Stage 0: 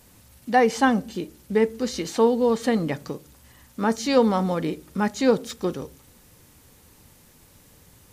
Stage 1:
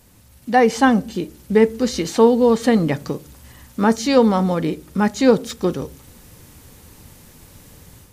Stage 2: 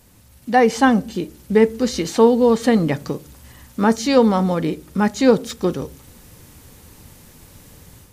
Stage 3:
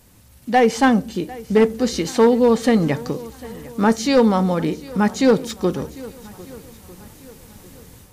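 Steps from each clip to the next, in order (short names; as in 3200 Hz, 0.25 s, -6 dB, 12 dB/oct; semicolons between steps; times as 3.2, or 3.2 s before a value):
low shelf 230 Hz +4 dB; AGC gain up to 7 dB
nothing audible
hard clip -7.5 dBFS, distortion -19 dB; swung echo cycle 1.248 s, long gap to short 1.5:1, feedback 32%, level -20 dB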